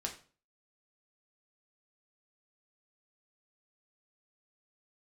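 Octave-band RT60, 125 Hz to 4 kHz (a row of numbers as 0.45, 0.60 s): 0.50, 0.45, 0.40, 0.40, 0.35, 0.35 s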